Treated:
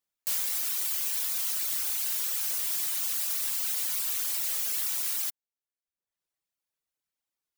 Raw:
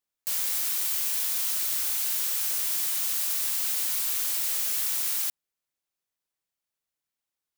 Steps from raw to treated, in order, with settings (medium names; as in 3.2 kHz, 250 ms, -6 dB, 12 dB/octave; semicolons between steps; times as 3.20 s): reverb removal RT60 0.85 s